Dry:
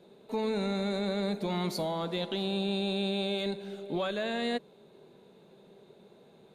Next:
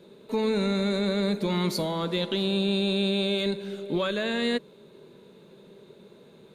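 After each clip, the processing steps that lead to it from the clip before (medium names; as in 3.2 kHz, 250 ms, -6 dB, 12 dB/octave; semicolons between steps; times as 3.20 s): peaking EQ 740 Hz -12.5 dB 0.3 oct; trim +6 dB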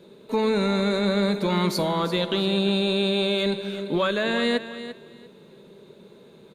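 feedback delay 344 ms, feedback 23%, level -12.5 dB; dynamic bell 1.1 kHz, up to +5 dB, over -45 dBFS, Q 0.82; trim +2 dB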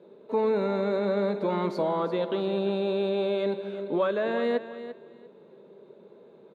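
band-pass filter 570 Hz, Q 0.89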